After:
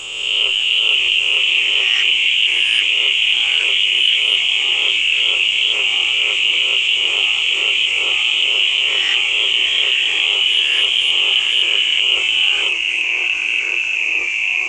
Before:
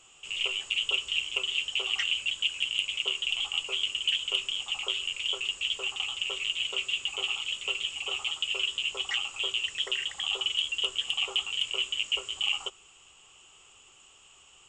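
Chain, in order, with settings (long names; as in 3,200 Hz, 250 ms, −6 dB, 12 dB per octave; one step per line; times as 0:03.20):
peak hold with a rise ahead of every peak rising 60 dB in 0.93 s
dynamic equaliser 3,000 Hz, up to +7 dB, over −38 dBFS, Q 2.7
delay with pitch and tempo change per echo 548 ms, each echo −2 semitones, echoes 2, each echo −6 dB
envelope flattener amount 50%
level +2 dB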